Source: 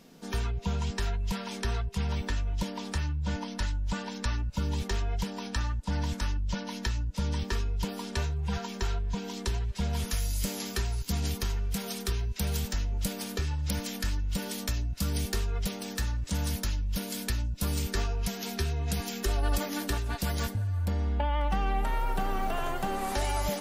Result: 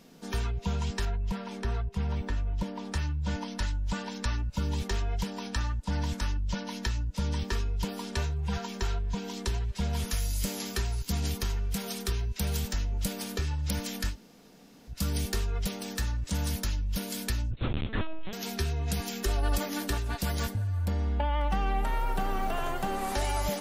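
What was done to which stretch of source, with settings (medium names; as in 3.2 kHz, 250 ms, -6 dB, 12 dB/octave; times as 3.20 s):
1.05–2.94 s: treble shelf 2.4 kHz -11 dB
14.12–14.92 s: room tone, crossfade 0.10 s
17.51–18.33 s: LPC vocoder at 8 kHz pitch kept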